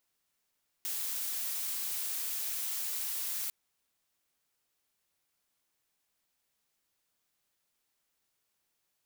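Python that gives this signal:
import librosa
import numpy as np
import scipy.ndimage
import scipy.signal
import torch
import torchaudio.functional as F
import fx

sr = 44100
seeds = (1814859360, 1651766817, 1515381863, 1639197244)

y = fx.noise_colour(sr, seeds[0], length_s=2.65, colour='blue', level_db=-35.5)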